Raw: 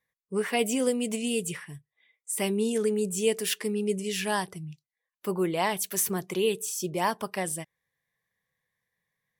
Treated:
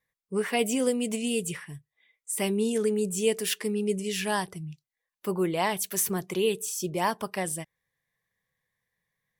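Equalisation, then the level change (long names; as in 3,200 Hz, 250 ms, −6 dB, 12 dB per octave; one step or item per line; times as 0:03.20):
low-shelf EQ 73 Hz +6.5 dB
0.0 dB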